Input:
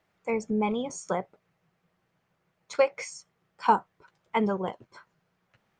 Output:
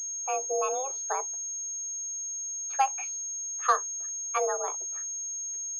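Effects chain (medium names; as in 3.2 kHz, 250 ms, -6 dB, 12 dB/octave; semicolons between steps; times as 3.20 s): frequency shift +260 Hz; class-D stage that switches slowly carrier 6.5 kHz; trim -2.5 dB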